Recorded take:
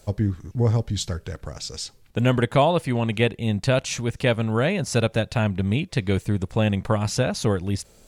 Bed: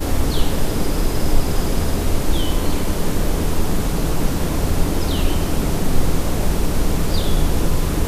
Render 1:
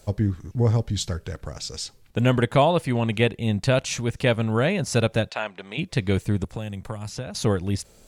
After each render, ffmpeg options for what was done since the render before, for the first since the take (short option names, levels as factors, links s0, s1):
-filter_complex "[0:a]asplit=3[s0][s1][s2];[s0]afade=t=out:st=5.29:d=0.02[s3];[s1]highpass=620,lowpass=6200,afade=t=in:st=5.29:d=0.02,afade=t=out:st=5.77:d=0.02[s4];[s2]afade=t=in:st=5.77:d=0.02[s5];[s3][s4][s5]amix=inputs=3:normalize=0,asettb=1/sr,asplit=3[s6][s7][s8];[s6]atrim=end=6.444[s9];[s7]atrim=start=6.44:end=7.35,asetpts=PTS-STARTPTS,afade=t=in:d=0.004:c=qsin,afade=t=out:st=0.906:d=0.004:c=qsin,acrossover=split=90|6100[s10][s11][s12];[s10]acompressor=threshold=0.0112:ratio=4[s13];[s11]acompressor=threshold=0.0224:ratio=4[s14];[s12]acompressor=threshold=0.00447:ratio=4[s15];[s13][s14][s15]amix=inputs=3:normalize=0[s16];[s8]atrim=start=7.346[s17];[s9][s16]acrossfade=d=0.004:c1=hsin:c2=qsin[s18];[s18][s17]acrossfade=d=0.004:c1=qsin:c2=hsin"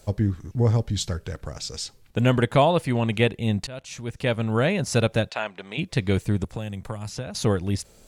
-filter_complex "[0:a]asplit=2[s0][s1];[s0]atrim=end=3.67,asetpts=PTS-STARTPTS,afade=t=out:st=3.666:d=0.004:c=hsin:silence=0.0749894[s2];[s1]atrim=start=3.67,asetpts=PTS-STARTPTS,afade=t=in:d=0.92:silence=0.0749894[s3];[s2][s3]concat=n=2:v=0:a=1"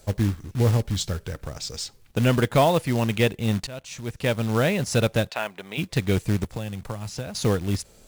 -af "volume=4.22,asoftclip=hard,volume=0.237,acrusher=bits=4:mode=log:mix=0:aa=0.000001"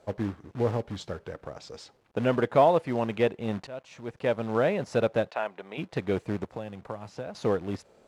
-af "acrusher=bits=9:mix=0:aa=0.000001,bandpass=f=640:t=q:w=0.71:csg=0"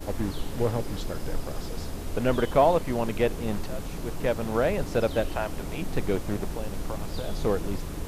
-filter_complex "[1:a]volume=0.178[s0];[0:a][s0]amix=inputs=2:normalize=0"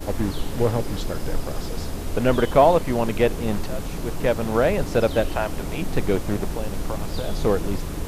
-af "volume=1.78"